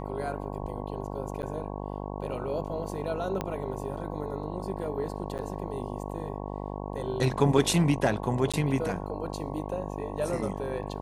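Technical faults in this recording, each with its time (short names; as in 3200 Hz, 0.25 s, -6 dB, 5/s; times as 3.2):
buzz 50 Hz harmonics 22 -36 dBFS
1.42–1.43 gap 8.8 ms
3.41 pop -16 dBFS
5.38–5.39 gap 9 ms
8.52–8.54 gap 16 ms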